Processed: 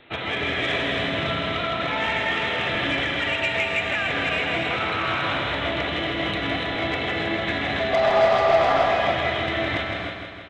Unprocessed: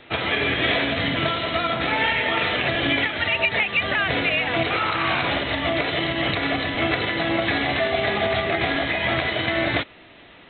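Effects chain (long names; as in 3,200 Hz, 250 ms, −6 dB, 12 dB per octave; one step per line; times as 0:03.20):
0:07.93–0:08.85: flat-topped bell 810 Hz +14 dB
soft clipping −12 dBFS, distortion −11 dB
on a send: repeating echo 161 ms, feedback 60%, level −6 dB
on the sum: reverb whose tail is shaped and stops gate 320 ms rising, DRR 3 dB
level −4.5 dB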